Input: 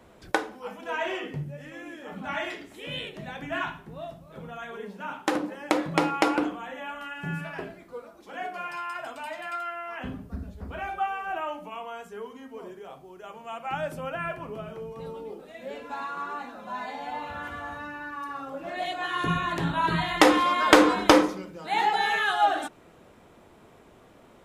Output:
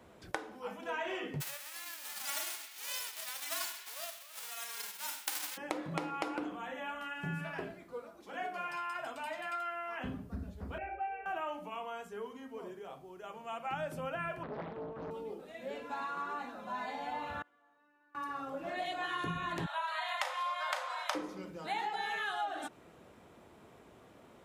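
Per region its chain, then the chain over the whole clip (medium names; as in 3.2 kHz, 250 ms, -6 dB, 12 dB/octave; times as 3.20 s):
1.40–5.56 s: formants flattened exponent 0.1 + high-pass 700 Hz + band-passed feedback delay 129 ms, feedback 73%, band-pass 2.6 kHz, level -13 dB
10.78–11.26 s: steep low-pass 2.7 kHz 96 dB/octave + static phaser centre 470 Hz, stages 4 + doubling 32 ms -7.5 dB
14.43–15.11 s: low-pass 2.2 kHz + loudspeaker Doppler distortion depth 0.9 ms
17.42–18.15 s: band-pass filter 330 Hz, Q 1.3 + differentiator
19.66–21.15 s: steep high-pass 560 Hz 96 dB/octave + doubling 35 ms -7.5 dB
whole clip: high-pass 52 Hz; compression 12:1, threshold -29 dBFS; trim -4 dB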